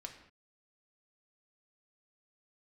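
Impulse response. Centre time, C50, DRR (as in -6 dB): 18 ms, 8.5 dB, 2.0 dB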